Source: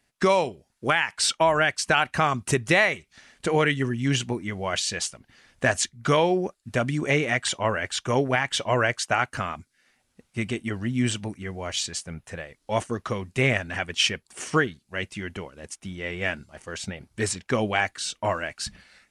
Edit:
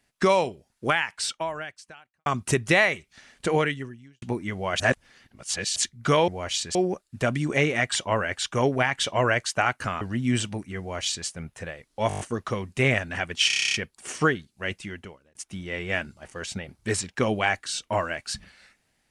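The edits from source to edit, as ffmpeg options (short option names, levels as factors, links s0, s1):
-filter_complex "[0:a]asplit=24[s0][s1][s2][s3][s4][s5][s6][s7][s8][s9][s10][s11][s12][s13][s14][s15][s16][s17][s18][s19][s20][s21][s22][s23];[s0]atrim=end=2.26,asetpts=PTS-STARTPTS,afade=t=out:st=0.85:d=1.41:c=qua[s24];[s1]atrim=start=2.26:end=4.22,asetpts=PTS-STARTPTS,afade=t=in:d=0.004:c=hsin,afade=t=out:st=1.28:d=0.68:c=qua[s25];[s2]atrim=start=4.22:end=4.802,asetpts=PTS-STARTPTS,afade=t=in:d=0.004:c=hsin[s26];[s3]atrim=start=4.798:end=5.762,asetpts=PTS-STARTPTS,areverse[s27];[s4]atrim=start=5.758:end=6.282[s28];[s5]atrim=start=11.508:end=11.982[s29];[s6]atrim=start=6.278:end=9.542[s30];[s7]atrim=start=10.718:end=12.812[s31];[s8]atrim=start=12.788:end=12.812[s32];[s9]atrim=start=12.788:end=12.812[s33];[s10]atrim=start=12.788:end=12.812[s34];[s11]atrim=start=12.788:end=12.812[s35];[s12]atrim=start=12.788:end=12.812[s36];[s13]atrim=start=12.788:end=14.092[s37];[s14]atrim=start=14.058:end=14.092[s38];[s15]atrim=start=14.058:end=14.092[s39];[s16]atrim=start=14.058:end=14.092[s40];[s17]atrim=start=14.058:end=14.092[s41];[s18]atrim=start=14.058:end=14.092[s42];[s19]atrim=start=14.058:end=14.092[s43];[s20]atrim=start=14.058:end=14.092[s44];[s21]atrim=start=14.058:end=14.092[s45];[s22]atrim=start=14.058:end=15.67,asetpts=PTS-STARTPTS,afade=t=out:st=0.972:d=0.64[s46];[s23]atrim=start=15.67,asetpts=PTS-STARTPTS,afade=t=in:d=0.004:c=hsin[s47];[s24][s25][s26]concat=n=3:v=0:a=1[s48];[s48][s27]acrossfade=d=0.004:c1=hsin:c2=hsin[s49];[s49][s28]acrossfade=d=0.004:c1=hsin:c2=hsin[s50];[s50][s29]acrossfade=d=0.004:c1=hsin:c2=hsin[s51];[s51][s30]acrossfade=d=0.004:c1=hsin:c2=hsin[s52];[s52][s31]acrossfade=d=0.004:c1=hsin:c2=hsin[s53];[s53][s32]acrossfade=d=0.004:c1=hsin:c2=hsin[s54];[s54][s33]acrossfade=d=0.004:c1=hsin:c2=hsin[s55];[s55][s34]acrossfade=d=0.004:c1=hsin:c2=hsin[s56];[s56][s35]acrossfade=d=0.004:c1=hsin:c2=hsin[s57];[s57][s36]acrossfade=d=0.004:c1=hsin:c2=hsin[s58];[s58][s37]acrossfade=d=0.004:c1=hsin:c2=hsin[s59];[s59][s38]acrossfade=d=0.004:c1=hsin:c2=hsin[s60];[s60][s39]acrossfade=d=0.004:c1=hsin:c2=hsin[s61];[s61][s40]acrossfade=d=0.004:c1=hsin:c2=hsin[s62];[s62][s41]acrossfade=d=0.004:c1=hsin:c2=hsin[s63];[s63][s42]acrossfade=d=0.004:c1=hsin:c2=hsin[s64];[s64][s43]acrossfade=d=0.004:c1=hsin:c2=hsin[s65];[s65][s44]acrossfade=d=0.004:c1=hsin:c2=hsin[s66];[s66][s45]acrossfade=d=0.004:c1=hsin:c2=hsin[s67];[s46][s47]concat=n=2:v=0:a=1[s68];[s67][s68]acrossfade=d=0.004:c1=hsin:c2=hsin"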